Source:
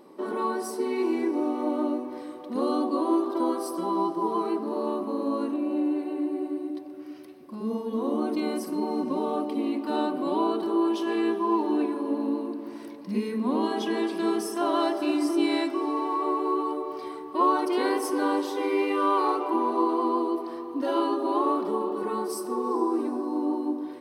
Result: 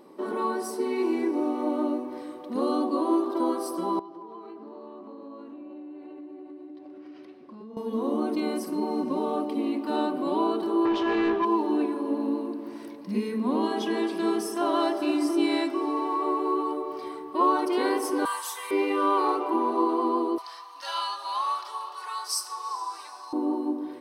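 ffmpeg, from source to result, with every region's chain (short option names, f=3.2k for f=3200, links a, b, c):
-filter_complex "[0:a]asettb=1/sr,asplit=3[a][b][c];[a]atrim=end=3.994[d];[b]atrim=start=3.99:end=7.77,asetpts=PTS-STARTPTS,afade=t=in:d=0.004:c=qsin,afade=t=out:st=3.776:d=0.004:c=qsin,acompressor=threshold=-40dB:ratio=6:attack=3.2:release=140:knee=1:detection=peak,aeval=exprs='val(0)+0.000398*(sin(2*PI*50*n/s)+sin(2*PI*2*50*n/s)/2+sin(2*PI*3*50*n/s)/3+sin(2*PI*4*50*n/s)/4+sin(2*PI*5*50*n/s)/5)':c=same,highpass=170,lowpass=4.3k[e];[c]atrim=start=7.766[f];[d][e]acrossfade=d=0.004:c1=hsin:c2=qsin[g];[g][f]acrossfade=d=0.004:c1=qsin:c2=hsin,asettb=1/sr,asplit=3[h][i][j];[h]atrim=end=10.854[k];[i]atrim=start=10.85:end=11.45,asetpts=PTS-STARTPTS,afade=t=in:d=0.004:c=qsin,afade=t=out:st=0.596:d=0.004:c=qsin,lowpass=5.1k,asplit=2[l][m];[m]highpass=f=720:p=1,volume=16dB,asoftclip=type=tanh:threshold=-16.5dB[n];[l][n]amix=inputs=2:normalize=0,lowpass=f=2.1k:p=1,volume=-6dB[o];[j]atrim=start=11.446[p];[k][o]acrossfade=d=0.004:c1=hsin:c2=qsin[q];[q][p]acrossfade=d=0.004:c1=qsin:c2=hsin,asettb=1/sr,asplit=3[r][s][t];[r]atrim=end=18.254[u];[s]atrim=start=18.25:end=18.71,asetpts=PTS-STARTPTS,afade=t=in:d=0.004:c=qsin,afade=t=out:st=0.456:d=0.004:c=qsin,highpass=f=900:w=0.5412,highpass=f=900:w=1.3066,highshelf=f=6.2k:t=q:w=1.5:g=10,aecho=1:1:4.4:0.93,atrim=end_sample=20286[v];[t]atrim=start=18.706[w];[u][v]acrossfade=d=0.004:c1=hsin:c2=qsin[x];[x][w]acrossfade=d=0.004:c1=qsin:c2=hsin,asettb=1/sr,asplit=3[y][z][aa];[y]atrim=end=20.384[ab];[z]atrim=start=20.38:end=23.33,asetpts=PTS-STARTPTS,afade=t=in:d=0.004:c=qsin,afade=t=out:st=2.946:d=0.004:c=qsin,highpass=f=920:w=0.5412,highpass=f=920:w=1.3066,equalizer=f=5.4k:w=0.81:g=14[ac];[aa]atrim=start=23.326[ad];[ab][ac]acrossfade=d=0.004:c1=hsin:c2=qsin[ae];[ae][ad]acrossfade=d=0.004:c1=qsin:c2=hsin"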